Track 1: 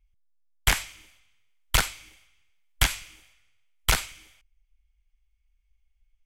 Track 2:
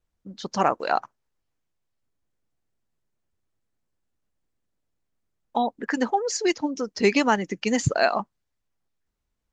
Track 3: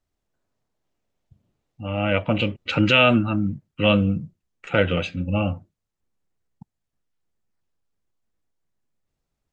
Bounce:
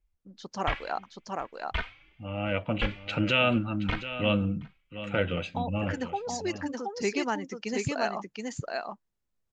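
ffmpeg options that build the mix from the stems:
-filter_complex "[0:a]lowpass=f=3k:w=0.5412,lowpass=f=3k:w=1.3066,asplit=2[a][b];[b]adelay=3,afreqshift=2.4[c];[a][c]amix=inputs=2:normalize=1,volume=-4.5dB,asplit=2[d][e];[e]volume=-24dB[f];[1:a]volume=-9.5dB,asplit=2[g][h];[h]volume=-3.5dB[i];[2:a]adelay=400,volume=-8dB,asplit=2[j][k];[k]volume=-12.5dB[l];[f][i][l]amix=inputs=3:normalize=0,aecho=0:1:723:1[m];[d][g][j][m]amix=inputs=4:normalize=0"

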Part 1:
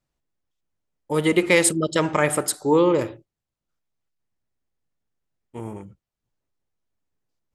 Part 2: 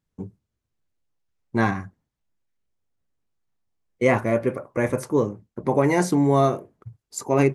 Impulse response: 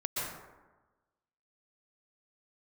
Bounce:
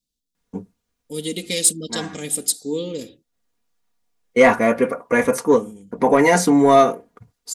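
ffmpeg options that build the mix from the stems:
-filter_complex "[0:a]firequalizer=gain_entry='entry(230,0);entry(990,-29);entry(3600,3)':delay=0.05:min_phase=1,volume=-5.5dB,asplit=2[a][b];[1:a]adelay=350,volume=1.5dB[c];[b]apad=whole_len=348045[d];[c][d]sidechaincompress=threshold=-45dB:ratio=12:attack=42:release=372[e];[a][e]amix=inputs=2:normalize=0,lowshelf=f=290:g=-9,aecho=1:1:4.2:0.65,acontrast=61"

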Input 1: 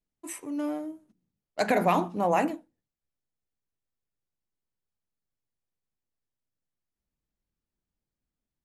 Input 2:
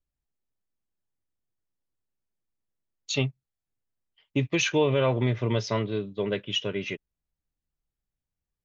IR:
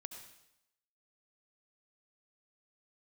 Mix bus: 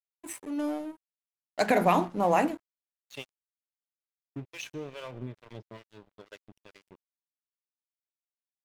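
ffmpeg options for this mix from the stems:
-filter_complex "[0:a]volume=1dB[a];[1:a]acrossover=split=500[b][c];[b]aeval=exprs='val(0)*(1-1/2+1/2*cos(2*PI*2.3*n/s))':c=same[d];[c]aeval=exprs='val(0)*(1-1/2-1/2*cos(2*PI*2.3*n/s))':c=same[e];[d][e]amix=inputs=2:normalize=0,volume=-4.5dB,afade=t=out:st=2.85:d=0.62:silence=0.421697,asplit=2[f][g];[g]volume=-5.5dB[h];[2:a]atrim=start_sample=2205[i];[h][i]afir=irnorm=-1:irlink=0[j];[a][f][j]amix=inputs=3:normalize=0,aeval=exprs='sgn(val(0))*max(abs(val(0))-0.00531,0)':c=same"

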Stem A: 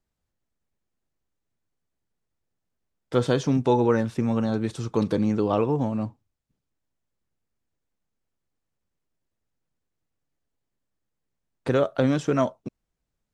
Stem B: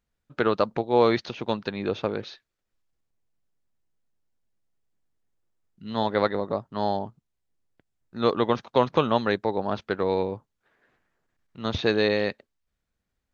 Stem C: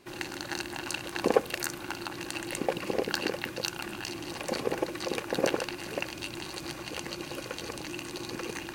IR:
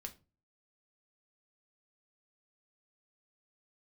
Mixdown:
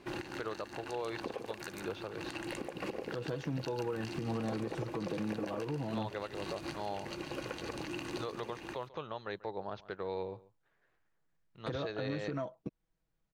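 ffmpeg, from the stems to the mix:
-filter_complex "[0:a]aecho=1:1:6.2:0.59,volume=-2.5dB[a];[1:a]equalizer=f=240:t=o:w=0.44:g=-12,alimiter=limit=-13dB:level=0:latency=1:release=326,volume=-9.5dB,asplit=3[b][c][d];[c]volume=-21dB[e];[2:a]tremolo=f=0.76:d=0.42,volume=3dB,asplit=2[f][g];[g]volume=-17.5dB[h];[d]apad=whole_len=385868[i];[f][i]sidechaincompress=threshold=-40dB:ratio=5:attack=16:release=235[j];[a][j]amix=inputs=2:normalize=0,lowpass=f=2.6k:p=1,acompressor=threshold=-28dB:ratio=6,volume=0dB[k];[e][h]amix=inputs=2:normalize=0,aecho=0:1:140:1[l];[b][k][l]amix=inputs=3:normalize=0,alimiter=level_in=3dB:limit=-24dB:level=0:latency=1:release=231,volume=-3dB"

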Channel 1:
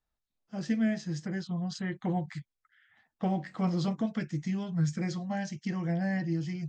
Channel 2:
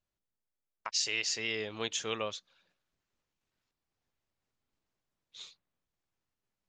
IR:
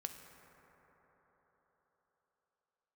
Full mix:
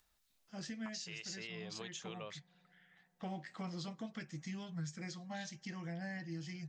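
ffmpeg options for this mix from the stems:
-filter_complex "[0:a]tiltshelf=f=1.2k:g=-5.5,acompressor=mode=upward:threshold=-58dB:ratio=2.5,volume=-6.5dB,asplit=2[a][b];[b]volume=-16.5dB[c];[1:a]volume=-5dB[d];[2:a]atrim=start_sample=2205[e];[c][e]afir=irnorm=-1:irlink=0[f];[a][d][f]amix=inputs=3:normalize=0,alimiter=level_in=10dB:limit=-24dB:level=0:latency=1:release=443,volume=-10dB"

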